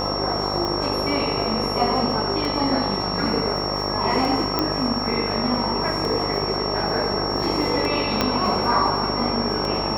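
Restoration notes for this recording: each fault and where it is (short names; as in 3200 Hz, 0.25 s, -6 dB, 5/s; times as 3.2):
buzz 50 Hz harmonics 26 -28 dBFS
tick 33 1/3 rpm -14 dBFS
tone 5500 Hz -27 dBFS
4.59 pop -7 dBFS
8.21 pop -4 dBFS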